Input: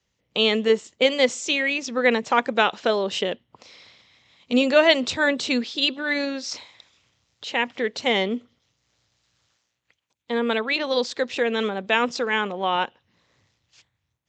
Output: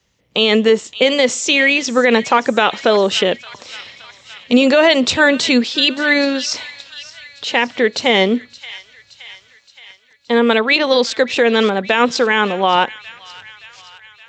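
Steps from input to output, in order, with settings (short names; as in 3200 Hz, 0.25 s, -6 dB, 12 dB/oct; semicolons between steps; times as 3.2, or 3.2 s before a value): 1.56–1.99 band noise 640–5200 Hz -61 dBFS; on a send: thin delay 0.571 s, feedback 61%, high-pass 1800 Hz, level -17 dB; on the sum: maximiser +12 dB; gain -1.5 dB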